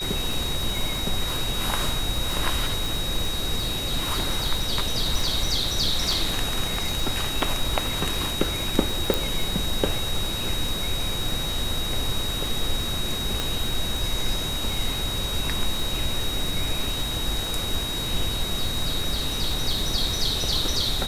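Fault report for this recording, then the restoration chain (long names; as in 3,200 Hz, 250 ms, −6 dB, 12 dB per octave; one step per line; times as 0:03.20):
surface crackle 57 per second −28 dBFS
whistle 3,800 Hz −29 dBFS
0:09.14: click
0:13.40: click −10 dBFS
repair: click removal
notch filter 3,800 Hz, Q 30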